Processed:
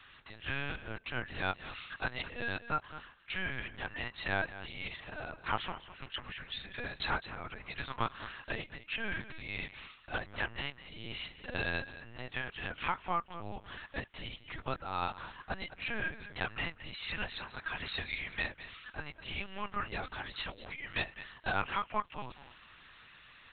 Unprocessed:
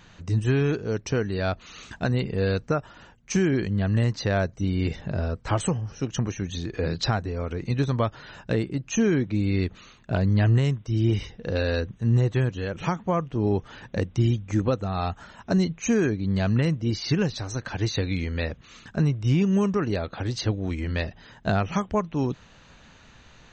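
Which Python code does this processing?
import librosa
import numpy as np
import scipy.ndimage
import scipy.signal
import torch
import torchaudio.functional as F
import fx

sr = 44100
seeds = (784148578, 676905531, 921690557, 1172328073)

p1 = scipy.signal.sosfilt(scipy.signal.butter(2, 1100.0, 'highpass', fs=sr, output='sos'), x)
p2 = p1 + fx.echo_single(p1, sr, ms=210, db=-14.0, dry=0)
y = fx.lpc_vocoder(p2, sr, seeds[0], excitation='pitch_kept', order=8)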